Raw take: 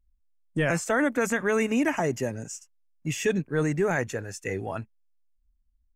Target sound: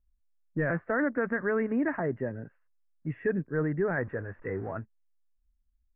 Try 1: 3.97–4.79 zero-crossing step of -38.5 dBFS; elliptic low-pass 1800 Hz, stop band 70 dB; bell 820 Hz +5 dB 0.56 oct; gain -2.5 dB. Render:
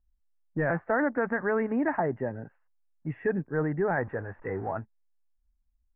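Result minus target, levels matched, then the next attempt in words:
1000 Hz band +4.5 dB
3.97–4.79 zero-crossing step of -38.5 dBFS; elliptic low-pass 1800 Hz, stop band 70 dB; bell 820 Hz -5.5 dB 0.56 oct; gain -2.5 dB

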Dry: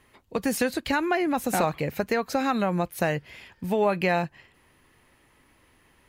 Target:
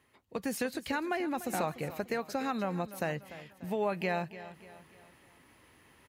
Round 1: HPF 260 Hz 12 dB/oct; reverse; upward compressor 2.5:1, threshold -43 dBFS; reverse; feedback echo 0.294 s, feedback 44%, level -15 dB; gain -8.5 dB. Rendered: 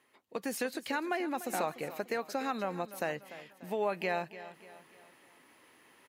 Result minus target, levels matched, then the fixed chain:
125 Hz band -7.0 dB
HPF 70 Hz 12 dB/oct; reverse; upward compressor 2.5:1, threshold -43 dBFS; reverse; feedback echo 0.294 s, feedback 44%, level -15 dB; gain -8.5 dB

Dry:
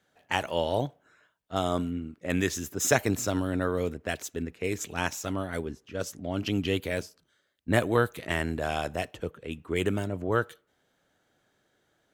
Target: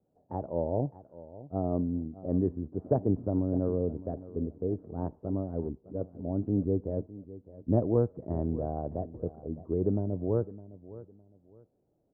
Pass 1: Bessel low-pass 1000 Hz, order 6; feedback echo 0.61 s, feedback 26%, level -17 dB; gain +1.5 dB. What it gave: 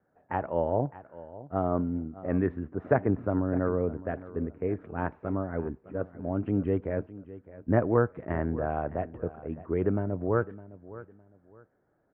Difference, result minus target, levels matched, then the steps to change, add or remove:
1000 Hz band +6.0 dB
change: Bessel low-pass 480 Hz, order 6

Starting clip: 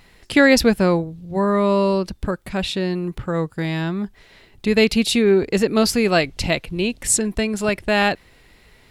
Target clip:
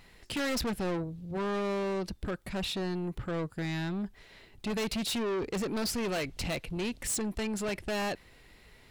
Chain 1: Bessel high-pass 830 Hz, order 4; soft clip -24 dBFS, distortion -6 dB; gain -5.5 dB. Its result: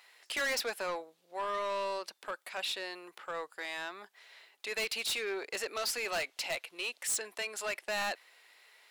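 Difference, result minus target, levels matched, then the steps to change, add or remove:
1000 Hz band +3.0 dB
remove: Bessel high-pass 830 Hz, order 4

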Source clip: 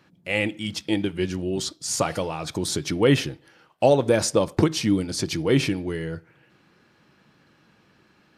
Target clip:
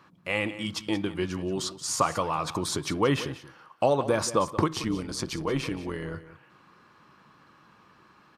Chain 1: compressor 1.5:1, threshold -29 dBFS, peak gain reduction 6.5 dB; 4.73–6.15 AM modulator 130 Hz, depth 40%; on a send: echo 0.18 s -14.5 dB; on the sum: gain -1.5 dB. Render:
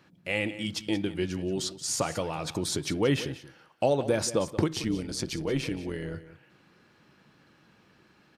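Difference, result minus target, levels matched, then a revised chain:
1000 Hz band -6.5 dB
compressor 1.5:1, threshold -29 dBFS, peak gain reduction 6.5 dB; bell 1100 Hz +14 dB 0.54 oct; 4.73–6.15 AM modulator 130 Hz, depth 40%; on a send: echo 0.18 s -14.5 dB; on the sum: gain -1.5 dB

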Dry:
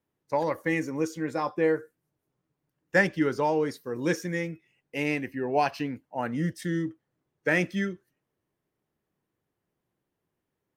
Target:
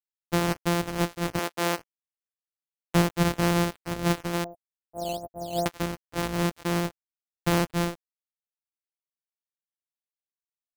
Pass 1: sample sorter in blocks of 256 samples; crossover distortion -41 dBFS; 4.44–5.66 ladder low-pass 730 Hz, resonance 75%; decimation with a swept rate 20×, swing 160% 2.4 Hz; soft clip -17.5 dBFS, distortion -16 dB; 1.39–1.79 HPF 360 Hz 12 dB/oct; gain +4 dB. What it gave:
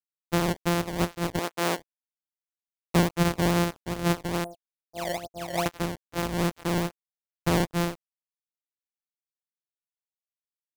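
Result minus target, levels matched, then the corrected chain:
decimation with a swept rate: distortion +6 dB
sample sorter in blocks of 256 samples; crossover distortion -41 dBFS; 4.44–5.66 ladder low-pass 730 Hz, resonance 75%; decimation with a swept rate 7×, swing 160% 2.4 Hz; soft clip -17.5 dBFS, distortion -16 dB; 1.39–1.79 HPF 360 Hz 12 dB/oct; gain +4 dB

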